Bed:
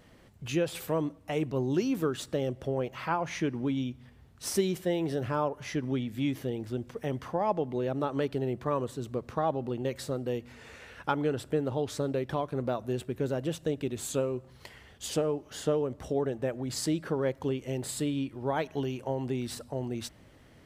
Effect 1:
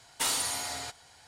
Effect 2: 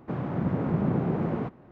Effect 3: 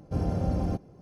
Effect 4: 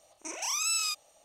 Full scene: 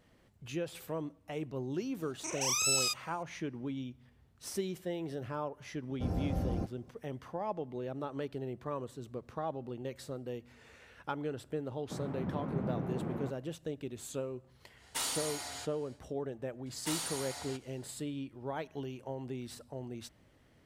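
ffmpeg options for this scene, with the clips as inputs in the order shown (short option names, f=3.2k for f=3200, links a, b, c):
-filter_complex "[1:a]asplit=2[a][b];[0:a]volume=-8.5dB[c];[3:a]bandreject=f=3.2k:w=12[d];[4:a]atrim=end=1.24,asetpts=PTS-STARTPTS,volume=-0.5dB,afade=t=in:d=0.004:c=hsin,afade=t=out:st=1.236:d=0.004:c=hsin,adelay=1990[e];[d]atrim=end=1.01,asetpts=PTS-STARTPTS,volume=-6.5dB,afade=t=in:d=0.004:c=hsin,afade=t=out:st=1.006:d=0.004:c=hsin,adelay=259749S[f];[2:a]atrim=end=1.71,asetpts=PTS-STARTPTS,volume=-10dB,afade=t=in:d=0.004:c=hsin,afade=t=out:st=1.706:d=0.004:c=hsin,adelay=11820[g];[a]atrim=end=1.27,asetpts=PTS-STARTPTS,volume=-6.5dB,afade=t=in:d=0.1,afade=t=out:st=1.17:d=0.1,adelay=14750[h];[b]atrim=end=1.27,asetpts=PTS-STARTPTS,volume=-8.5dB,afade=t=in:d=0.004:c=hsin,afade=t=out:st=1.266:d=0.004:c=hsin,adelay=16660[i];[c][e][f][g][h][i]amix=inputs=6:normalize=0"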